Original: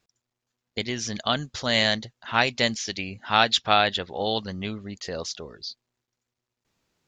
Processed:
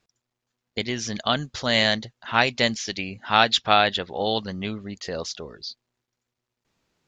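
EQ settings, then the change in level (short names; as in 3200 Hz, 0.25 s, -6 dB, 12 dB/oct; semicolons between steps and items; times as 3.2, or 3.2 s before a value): bell 93 Hz -3.5 dB 0.28 oct; high shelf 8000 Hz -6.5 dB; +2.0 dB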